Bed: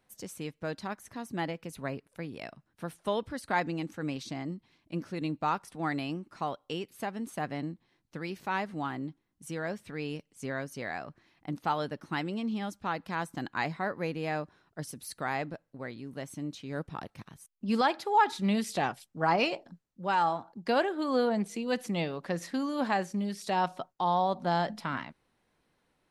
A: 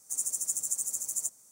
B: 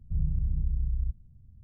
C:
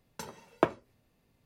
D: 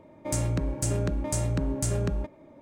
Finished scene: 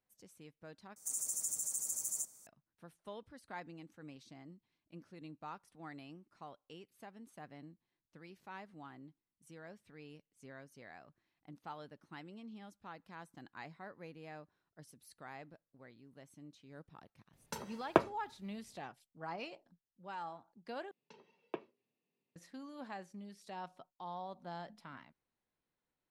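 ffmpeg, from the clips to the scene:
ffmpeg -i bed.wav -i cue0.wav -i cue1.wav -i cue2.wav -filter_complex "[3:a]asplit=2[link_01][link_02];[0:a]volume=-17.5dB[link_03];[1:a]alimiter=limit=-23.5dB:level=0:latency=1:release=18[link_04];[link_02]highpass=frequency=160:width=0.5412,highpass=frequency=160:width=1.3066,equalizer=frequency=410:width_type=q:width=4:gain=7,equalizer=frequency=610:width_type=q:width=4:gain=-4,equalizer=frequency=1400:width_type=q:width=4:gain=-8,equalizer=frequency=2700:width_type=q:width=4:gain=7,lowpass=frequency=4900:width=0.5412,lowpass=frequency=4900:width=1.3066[link_05];[link_03]asplit=3[link_06][link_07][link_08];[link_06]atrim=end=0.964[link_09];[link_04]atrim=end=1.51,asetpts=PTS-STARTPTS,volume=-2dB[link_10];[link_07]atrim=start=2.466:end=20.914[link_11];[link_05]atrim=end=1.45,asetpts=PTS-STARTPTS,volume=-17.5dB[link_12];[link_08]atrim=start=22.356[link_13];[link_01]atrim=end=1.45,asetpts=PTS-STARTPTS,volume=-1.5dB,afade=type=in:duration=0.004:curve=hsin,afade=type=out:start_time=1.446:duration=0.004:curve=hsin,adelay=17330[link_14];[link_09][link_10]acrossfade=duration=0.004:curve1=hsin:curve2=hsin[link_15];[link_15][link_11]acrossfade=duration=0.004:curve1=hsin:curve2=hsin[link_16];[link_16][link_12]acrossfade=duration=0.004:curve1=hsin:curve2=hsin[link_17];[link_17][link_13]acrossfade=duration=0.004:curve1=hsin:curve2=hsin[link_18];[link_18][link_14]amix=inputs=2:normalize=0" out.wav

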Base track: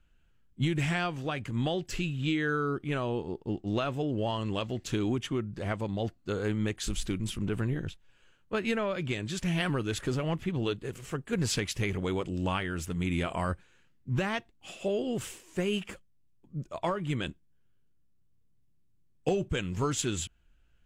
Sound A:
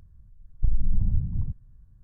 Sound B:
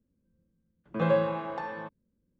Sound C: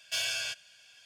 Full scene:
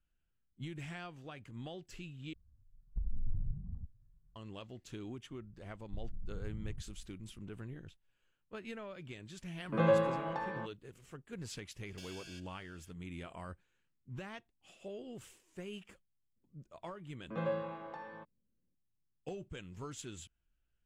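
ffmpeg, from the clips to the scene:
ffmpeg -i bed.wav -i cue0.wav -i cue1.wav -i cue2.wav -filter_complex "[1:a]asplit=2[link_01][link_02];[2:a]asplit=2[link_03][link_04];[0:a]volume=-15.5dB[link_05];[link_01]asplit=2[link_06][link_07];[link_07]adelay=2.2,afreqshift=1.5[link_08];[link_06][link_08]amix=inputs=2:normalize=1[link_09];[link_02]acompressor=threshold=-22dB:ratio=6:attack=0.6:release=179:knee=1:detection=peak[link_10];[3:a]acompressor=threshold=-37dB:ratio=6:attack=3.2:release=140:knee=1:detection=peak[link_11];[link_05]asplit=2[link_12][link_13];[link_12]atrim=end=2.334[link_14];[link_09]atrim=end=2.03,asetpts=PTS-STARTPTS,volume=-11.5dB[link_15];[link_13]atrim=start=4.356[link_16];[link_10]atrim=end=2.03,asetpts=PTS-STARTPTS,volume=-13.5dB,afade=type=in:duration=0.004:curve=hsin,afade=type=out:start_time=2.026:duration=0.004:curve=hsin,adelay=5300[link_17];[link_03]atrim=end=2.39,asetpts=PTS-STARTPTS,volume=-3dB,afade=type=in:duration=0.004:curve=hsin,afade=type=out:start_time=2.386:duration=0.004:curve=hsin,adelay=8780[link_18];[link_11]atrim=end=1.05,asetpts=PTS-STARTPTS,volume=-12dB,afade=type=in:duration=0.004:curve=hsin,afade=type=out:start_time=1.046:duration=0.004:curve=hsin,adelay=523026S[link_19];[link_04]atrim=end=2.39,asetpts=PTS-STARTPTS,volume=-11dB,afade=type=in:duration=0.004:curve=hsin,afade=type=out:start_time=2.386:duration=0.004:curve=hsin,adelay=721476S[link_20];[link_14][link_15]acrossfade=duration=0.004:curve1=hsin:curve2=hsin[link_21];[link_21][link_16]acrossfade=duration=0.004:curve1=hsin:curve2=hsin[link_22];[link_22][link_17][link_18][link_19][link_20]amix=inputs=5:normalize=0" out.wav

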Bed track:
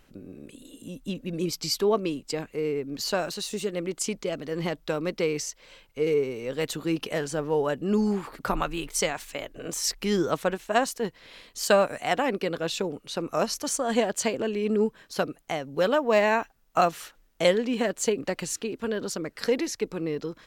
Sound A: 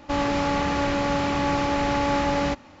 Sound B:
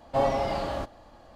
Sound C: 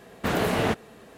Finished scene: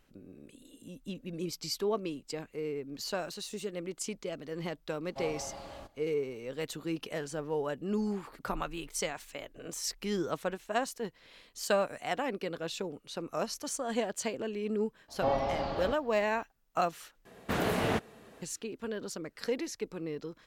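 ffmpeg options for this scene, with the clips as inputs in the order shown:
ffmpeg -i bed.wav -i cue0.wav -i cue1.wav -i cue2.wav -filter_complex "[2:a]asplit=2[link_01][link_02];[0:a]volume=-8dB[link_03];[link_01]highshelf=frequency=4900:gain=9[link_04];[link_02]lowpass=frequency=5600:width=0.5412,lowpass=frequency=5600:width=1.3066[link_05];[link_03]asplit=2[link_06][link_07];[link_06]atrim=end=17.254[link_08];[3:a]atrim=end=1.17,asetpts=PTS-STARTPTS,volume=-5.5dB[link_09];[link_07]atrim=start=18.416[link_10];[link_04]atrim=end=1.35,asetpts=PTS-STARTPTS,volume=-16dB,afade=type=in:duration=0.004:curve=hsin,afade=type=out:start_time=1.346:duration=0.004:curve=hsin,adelay=5020[link_11];[link_05]atrim=end=1.35,asetpts=PTS-STARTPTS,volume=-5dB,afade=type=in:duration=0.004:curve=hsin,afade=type=out:start_time=1.346:duration=0.004:curve=hsin,adelay=665028S[link_12];[link_08][link_09]acrossfade=duration=0.004:curve1=hsin:curve2=hsin[link_13];[link_13][link_10]acrossfade=duration=0.004:curve1=hsin:curve2=hsin[link_14];[link_14][link_11][link_12]amix=inputs=3:normalize=0" out.wav

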